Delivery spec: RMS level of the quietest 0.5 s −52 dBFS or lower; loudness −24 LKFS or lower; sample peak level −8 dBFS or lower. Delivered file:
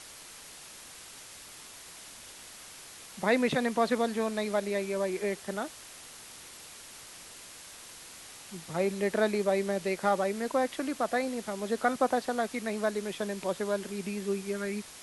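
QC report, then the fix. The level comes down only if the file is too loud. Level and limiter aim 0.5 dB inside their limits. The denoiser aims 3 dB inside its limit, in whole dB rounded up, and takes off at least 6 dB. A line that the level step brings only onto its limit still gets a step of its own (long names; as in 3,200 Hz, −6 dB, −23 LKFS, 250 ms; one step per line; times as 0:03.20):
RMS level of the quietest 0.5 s −48 dBFS: out of spec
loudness −30.5 LKFS: in spec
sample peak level −12.5 dBFS: in spec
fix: broadband denoise 7 dB, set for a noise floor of −48 dBFS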